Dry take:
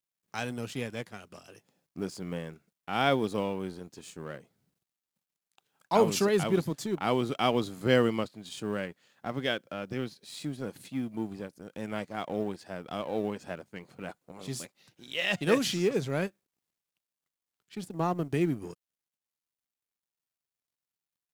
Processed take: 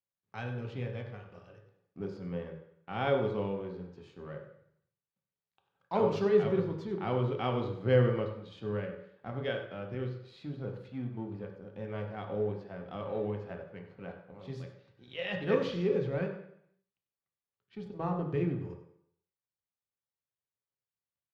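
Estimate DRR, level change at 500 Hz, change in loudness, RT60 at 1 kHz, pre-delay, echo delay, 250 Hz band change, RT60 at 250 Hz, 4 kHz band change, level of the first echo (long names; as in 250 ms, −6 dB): 1.5 dB, −1.0 dB, −2.5 dB, 0.70 s, 3 ms, 96 ms, −4.5 dB, 0.65 s, −10.5 dB, −13.0 dB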